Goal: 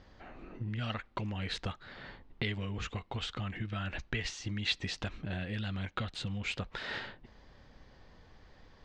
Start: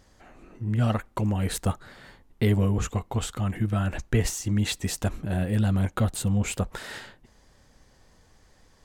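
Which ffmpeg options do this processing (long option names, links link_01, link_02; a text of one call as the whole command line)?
ffmpeg -i in.wav -filter_complex "[0:a]lowpass=frequency=4400:width=0.5412,lowpass=frequency=4400:width=1.3066,acrossover=split=1700[link_01][link_02];[link_01]acompressor=threshold=-37dB:ratio=6[link_03];[link_03][link_02]amix=inputs=2:normalize=0,volume=1dB" out.wav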